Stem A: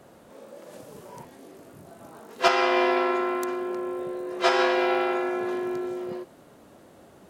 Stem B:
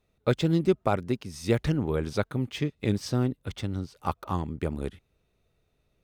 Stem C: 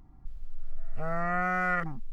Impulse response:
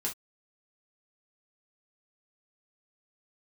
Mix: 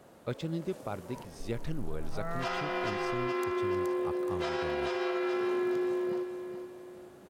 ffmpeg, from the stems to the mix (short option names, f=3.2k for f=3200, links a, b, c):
-filter_complex "[0:a]volume=-4dB,asplit=2[a][b];[b]volume=-8.5dB[c];[1:a]volume=-11dB[d];[2:a]adelay=1150,volume=-5.5dB[e];[a][e]amix=inputs=2:normalize=0,alimiter=limit=-24dB:level=0:latency=1:release=297,volume=0dB[f];[c]aecho=0:1:423|846|1269|1692|2115:1|0.38|0.144|0.0549|0.0209[g];[d][f][g]amix=inputs=3:normalize=0,alimiter=limit=-23.5dB:level=0:latency=1:release=93"